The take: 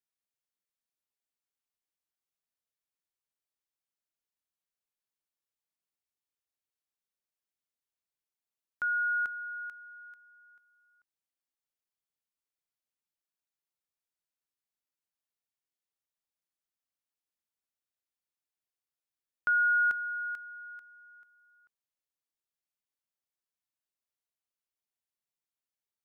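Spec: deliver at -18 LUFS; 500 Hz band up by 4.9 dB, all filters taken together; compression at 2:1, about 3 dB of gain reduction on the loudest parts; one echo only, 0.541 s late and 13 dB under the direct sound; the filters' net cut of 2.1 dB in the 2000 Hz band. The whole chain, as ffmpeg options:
-af "equalizer=f=500:t=o:g=6.5,equalizer=f=2k:t=o:g=-5,acompressor=threshold=-31dB:ratio=2,aecho=1:1:541:0.224,volume=16dB"

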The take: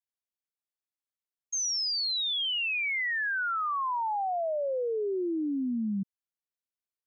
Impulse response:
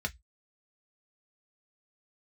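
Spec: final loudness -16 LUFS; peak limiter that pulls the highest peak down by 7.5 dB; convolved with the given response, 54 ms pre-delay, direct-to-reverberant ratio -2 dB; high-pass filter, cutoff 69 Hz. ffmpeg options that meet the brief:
-filter_complex "[0:a]highpass=69,alimiter=level_in=10.5dB:limit=-24dB:level=0:latency=1,volume=-10.5dB,asplit=2[a][b];[1:a]atrim=start_sample=2205,adelay=54[c];[b][c]afir=irnorm=-1:irlink=0,volume=-2dB[d];[a][d]amix=inputs=2:normalize=0,volume=16.5dB"

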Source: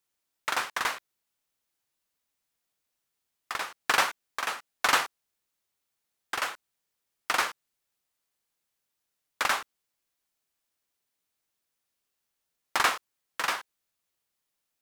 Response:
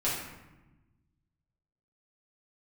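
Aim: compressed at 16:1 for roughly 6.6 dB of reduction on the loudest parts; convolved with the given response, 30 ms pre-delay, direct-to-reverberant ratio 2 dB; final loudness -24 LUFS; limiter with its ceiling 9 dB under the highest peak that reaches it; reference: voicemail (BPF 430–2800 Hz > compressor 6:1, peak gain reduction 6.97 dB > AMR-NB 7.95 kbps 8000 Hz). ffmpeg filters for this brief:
-filter_complex "[0:a]acompressor=threshold=-25dB:ratio=16,alimiter=limit=-20dB:level=0:latency=1,asplit=2[a][b];[1:a]atrim=start_sample=2205,adelay=30[c];[b][c]afir=irnorm=-1:irlink=0,volume=-10.5dB[d];[a][d]amix=inputs=2:normalize=0,highpass=430,lowpass=2.8k,acompressor=threshold=-35dB:ratio=6,volume=19.5dB" -ar 8000 -c:a libopencore_amrnb -b:a 7950

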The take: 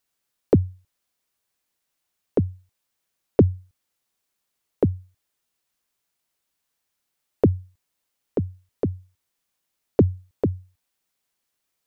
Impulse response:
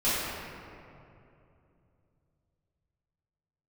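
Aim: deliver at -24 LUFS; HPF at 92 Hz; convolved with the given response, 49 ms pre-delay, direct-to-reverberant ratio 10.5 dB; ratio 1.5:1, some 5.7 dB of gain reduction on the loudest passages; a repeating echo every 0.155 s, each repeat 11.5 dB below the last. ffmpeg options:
-filter_complex "[0:a]highpass=92,acompressor=threshold=-28dB:ratio=1.5,aecho=1:1:155|310|465:0.266|0.0718|0.0194,asplit=2[a][b];[1:a]atrim=start_sample=2205,adelay=49[c];[b][c]afir=irnorm=-1:irlink=0,volume=-23.5dB[d];[a][d]amix=inputs=2:normalize=0,volume=7.5dB"

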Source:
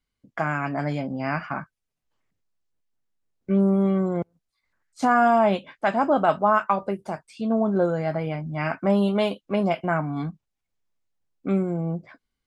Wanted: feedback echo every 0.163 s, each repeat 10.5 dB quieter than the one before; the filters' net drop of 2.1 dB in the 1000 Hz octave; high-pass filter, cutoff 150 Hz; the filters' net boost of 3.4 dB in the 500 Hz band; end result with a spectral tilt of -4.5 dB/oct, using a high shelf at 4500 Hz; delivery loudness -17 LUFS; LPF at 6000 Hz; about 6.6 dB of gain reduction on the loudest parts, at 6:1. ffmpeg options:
-af "highpass=150,lowpass=6k,equalizer=f=500:t=o:g=7.5,equalizer=f=1k:t=o:g=-7,highshelf=f=4.5k:g=-6.5,acompressor=threshold=-20dB:ratio=6,aecho=1:1:163|326|489:0.299|0.0896|0.0269,volume=9.5dB"

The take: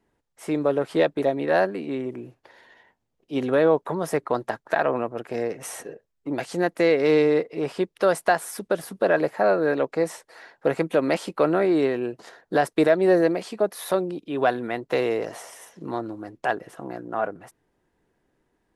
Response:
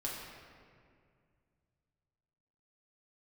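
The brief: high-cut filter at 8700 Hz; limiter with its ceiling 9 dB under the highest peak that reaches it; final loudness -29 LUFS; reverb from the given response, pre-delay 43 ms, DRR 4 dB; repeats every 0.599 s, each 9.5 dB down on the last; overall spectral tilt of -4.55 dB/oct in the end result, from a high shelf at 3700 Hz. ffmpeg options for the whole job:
-filter_complex "[0:a]lowpass=8.7k,highshelf=f=3.7k:g=6.5,alimiter=limit=-14dB:level=0:latency=1,aecho=1:1:599|1198|1797|2396:0.335|0.111|0.0365|0.012,asplit=2[a][b];[1:a]atrim=start_sample=2205,adelay=43[c];[b][c]afir=irnorm=-1:irlink=0,volume=-6dB[d];[a][d]amix=inputs=2:normalize=0,volume=-4dB"

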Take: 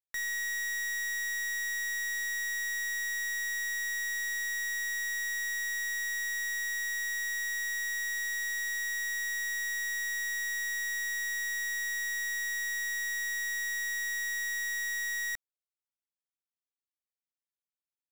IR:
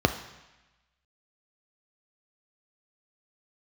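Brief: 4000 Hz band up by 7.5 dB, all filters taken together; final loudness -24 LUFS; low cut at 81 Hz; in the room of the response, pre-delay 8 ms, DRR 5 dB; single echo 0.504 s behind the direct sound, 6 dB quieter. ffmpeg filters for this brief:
-filter_complex "[0:a]highpass=81,equalizer=f=4k:t=o:g=8.5,aecho=1:1:504:0.501,asplit=2[a][b];[1:a]atrim=start_sample=2205,adelay=8[c];[b][c]afir=irnorm=-1:irlink=0,volume=-20dB[d];[a][d]amix=inputs=2:normalize=0,volume=7.5dB"

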